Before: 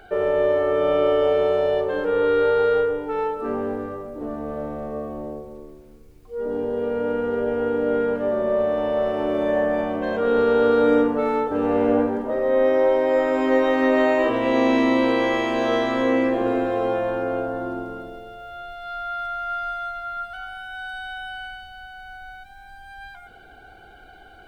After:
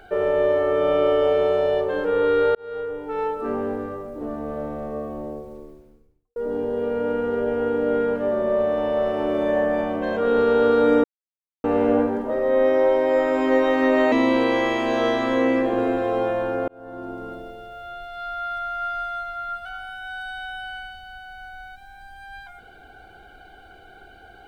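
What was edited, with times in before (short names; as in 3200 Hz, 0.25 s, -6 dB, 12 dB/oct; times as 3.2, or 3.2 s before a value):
2.55–3.3 fade in
5.54–6.36 studio fade out
11.04–11.64 mute
14.12–14.8 cut
17.36–18 fade in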